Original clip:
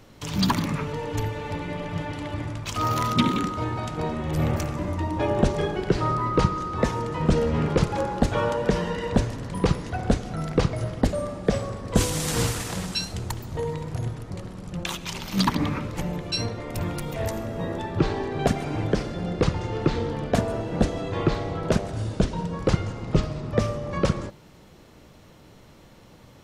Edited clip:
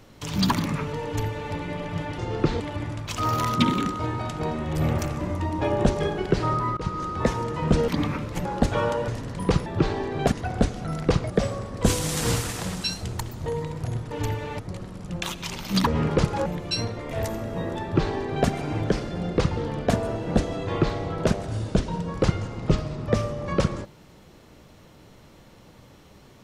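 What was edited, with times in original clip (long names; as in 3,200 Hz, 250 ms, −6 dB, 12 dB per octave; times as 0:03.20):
0:01.05–0:01.53: duplicate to 0:14.22
0:06.35–0:06.60: fade in, from −22.5 dB
0:07.46–0:08.05: swap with 0:15.50–0:16.07
0:08.68–0:09.23: remove
0:10.79–0:11.41: remove
0:16.72–0:17.14: remove
0:17.86–0:18.52: duplicate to 0:09.81
0:19.60–0:20.02: move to 0:02.18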